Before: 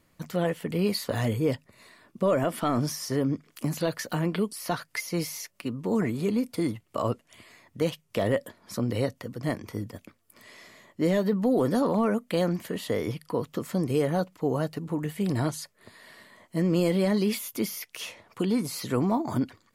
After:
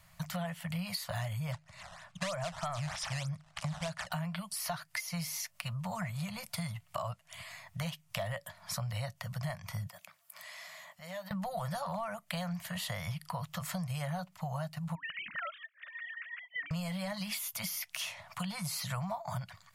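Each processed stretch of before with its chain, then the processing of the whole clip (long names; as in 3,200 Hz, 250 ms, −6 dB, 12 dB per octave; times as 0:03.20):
0:01.52–0:04.12: sample-and-hold swept by an LFO 11×, swing 160% 3.2 Hz + low-pass filter 9,300 Hz 24 dB per octave
0:09.87–0:11.31: high-pass filter 290 Hz + parametric band 14,000 Hz +4.5 dB 0.31 octaves + downward compressor 2 to 1, threshold −52 dBFS
0:14.95–0:16.71: three sine waves on the formant tracks + tilt shelving filter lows −6 dB, about 1,400 Hz + phaser with its sweep stopped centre 1,900 Hz, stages 4
whole clip: elliptic band-stop filter 170–640 Hz, stop band 40 dB; downward compressor 6 to 1, threshold −41 dBFS; level +6 dB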